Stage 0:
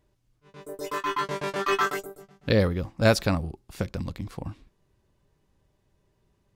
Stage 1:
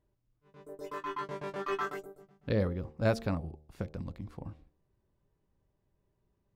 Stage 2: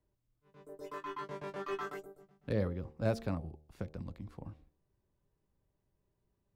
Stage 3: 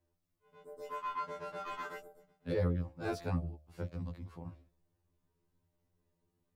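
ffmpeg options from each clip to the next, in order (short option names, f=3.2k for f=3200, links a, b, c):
-af "highshelf=f=2.1k:g=-11,bandreject=f=75.74:t=h:w=4,bandreject=f=151.48:t=h:w=4,bandreject=f=227.22:t=h:w=4,bandreject=f=302.96:t=h:w=4,bandreject=f=378.7:t=h:w=4,bandreject=f=454.44:t=h:w=4,bandreject=f=530.18:t=h:w=4,bandreject=f=605.92:t=h:w=4,bandreject=f=681.66:t=h:w=4,bandreject=f=757.4:t=h:w=4,bandreject=f=833.14:t=h:w=4,volume=-7dB"
-filter_complex "[0:a]acrossover=split=140|890|1900[a][b][c][d];[c]alimiter=level_in=12dB:limit=-24dB:level=0:latency=1,volume=-12dB[e];[d]asoftclip=type=tanh:threshold=-38.5dB[f];[a][b][e][f]amix=inputs=4:normalize=0,volume=-3.5dB"
-af "afftfilt=real='re*2*eq(mod(b,4),0)':imag='im*2*eq(mod(b,4),0)':win_size=2048:overlap=0.75,volume=3dB"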